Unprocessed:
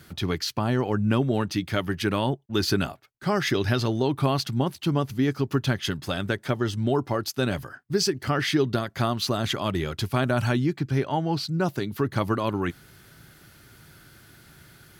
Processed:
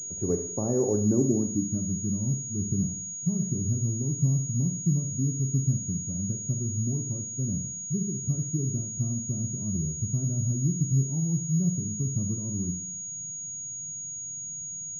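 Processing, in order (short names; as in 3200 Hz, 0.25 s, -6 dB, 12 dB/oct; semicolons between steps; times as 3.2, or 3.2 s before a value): Schroeder reverb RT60 0.67 s, combs from 30 ms, DRR 5.5 dB; low-pass sweep 490 Hz -> 170 Hz, 0.85–1.96; pulse-width modulation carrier 6700 Hz; gain -5 dB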